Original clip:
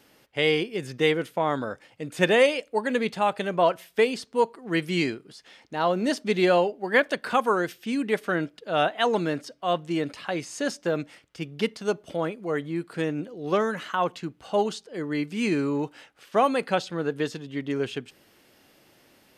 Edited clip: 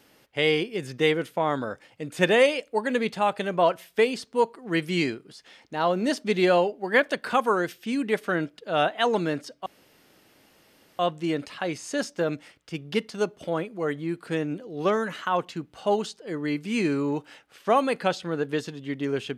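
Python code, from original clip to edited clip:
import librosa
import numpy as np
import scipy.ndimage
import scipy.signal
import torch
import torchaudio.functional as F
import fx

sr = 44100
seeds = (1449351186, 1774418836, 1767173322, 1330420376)

y = fx.edit(x, sr, fx.insert_room_tone(at_s=9.66, length_s=1.33), tone=tone)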